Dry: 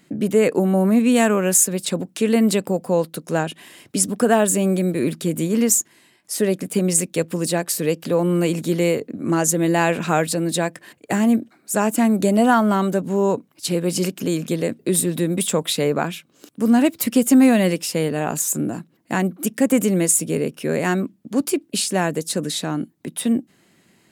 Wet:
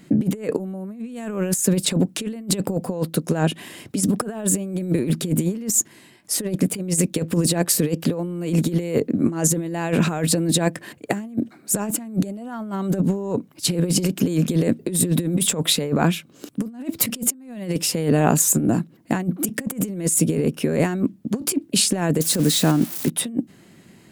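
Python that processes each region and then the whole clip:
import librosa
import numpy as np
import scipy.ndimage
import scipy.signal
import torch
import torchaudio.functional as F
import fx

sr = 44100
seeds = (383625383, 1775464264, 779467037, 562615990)

y = fx.chain(x, sr, fx.crossing_spikes(level_db=-21.5),
    fx.high_shelf(hz=8400.0, db=-4.5), at=(22.21, 23.1))
y = fx.low_shelf(y, sr, hz=380.0, db=8.0)
y = fx.over_compress(y, sr, threshold_db=-19.0, ratio=-0.5)
y = F.gain(torch.from_numpy(y), -1.5).numpy()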